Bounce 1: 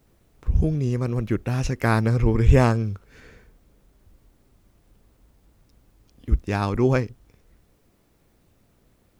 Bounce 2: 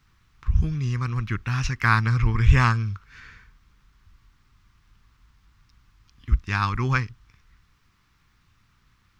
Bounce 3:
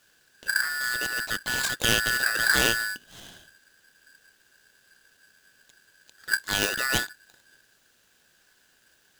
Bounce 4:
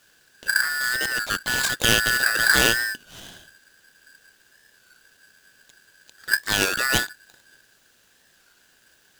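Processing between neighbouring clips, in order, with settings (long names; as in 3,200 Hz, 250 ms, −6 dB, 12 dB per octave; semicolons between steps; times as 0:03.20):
drawn EQ curve 120 Hz 0 dB, 610 Hz −19 dB, 1,100 Hz +7 dB, 5,600 Hz +3 dB, 9,100 Hz −9 dB
asymmetric clip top −25 dBFS, bottom −9 dBFS; bass and treble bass −2 dB, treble +13 dB; ring modulator with a square carrier 1,600 Hz; level −1.5 dB
wow of a warped record 33 1/3 rpm, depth 100 cents; level +4 dB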